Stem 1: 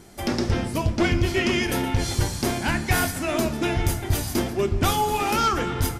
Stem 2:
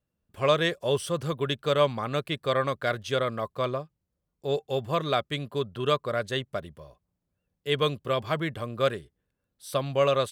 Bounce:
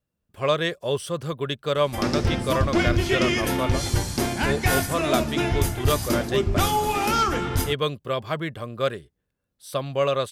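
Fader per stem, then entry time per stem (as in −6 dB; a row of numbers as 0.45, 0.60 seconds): 0.0, +0.5 decibels; 1.75, 0.00 seconds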